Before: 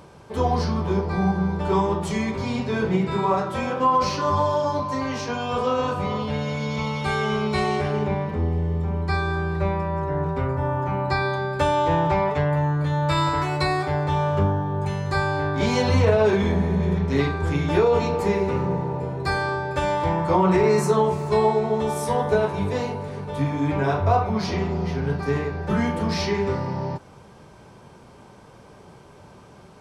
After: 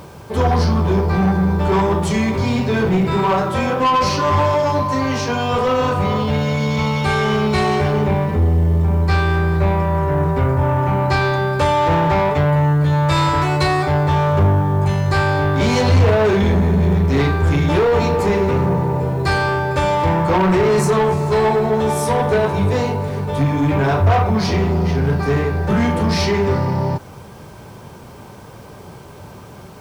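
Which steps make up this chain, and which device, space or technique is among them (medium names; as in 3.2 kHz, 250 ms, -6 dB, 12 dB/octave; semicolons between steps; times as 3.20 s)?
open-reel tape (saturation -20 dBFS, distortion -12 dB; peaking EQ 98 Hz +4.5 dB 0.87 oct; white noise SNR 39 dB); trim +8.5 dB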